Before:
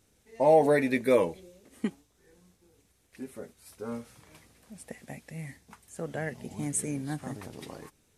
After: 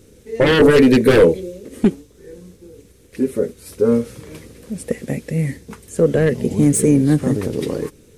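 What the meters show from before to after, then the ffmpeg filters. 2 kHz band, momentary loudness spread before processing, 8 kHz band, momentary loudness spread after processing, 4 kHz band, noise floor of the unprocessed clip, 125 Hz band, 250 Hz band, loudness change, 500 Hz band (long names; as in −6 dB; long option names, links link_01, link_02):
+13.0 dB, 23 LU, +10.5 dB, 17 LU, +20.0 dB, −68 dBFS, +19.0 dB, +17.5 dB, +11.5 dB, +12.5 dB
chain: -af "aeval=exprs='0.299*sin(PI/2*4.47*val(0)/0.299)':channel_layout=same,lowshelf=frequency=590:width_type=q:width=3:gain=6.5,volume=-3.5dB"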